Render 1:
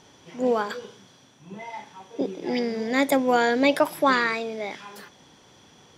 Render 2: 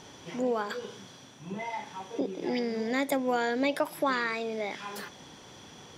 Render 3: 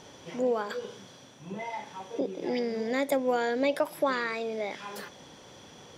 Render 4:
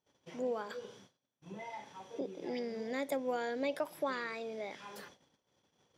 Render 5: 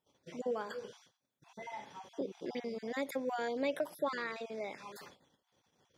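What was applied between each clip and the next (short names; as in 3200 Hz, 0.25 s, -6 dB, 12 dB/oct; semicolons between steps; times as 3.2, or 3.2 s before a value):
compressor 2:1, threshold -38 dBFS, peak gain reduction 13 dB; gain +4 dB
bell 540 Hz +5.5 dB 0.48 oct; gain -1.5 dB
gate -47 dBFS, range -29 dB; gain -8.5 dB
random spectral dropouts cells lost 20%; gain +1 dB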